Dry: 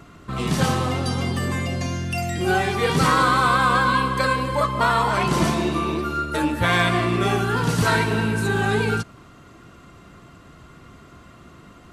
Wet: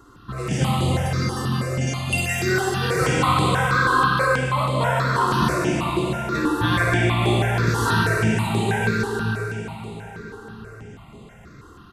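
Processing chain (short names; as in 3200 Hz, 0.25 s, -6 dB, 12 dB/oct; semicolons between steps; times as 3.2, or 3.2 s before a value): 1.87–2.43 tilt shelf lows -9.5 dB, about 660 Hz; outdoor echo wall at 250 m, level -15 dB; plate-style reverb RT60 4.1 s, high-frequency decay 0.95×, DRR -2.5 dB; step phaser 6.2 Hz 630–5600 Hz; gain -1.5 dB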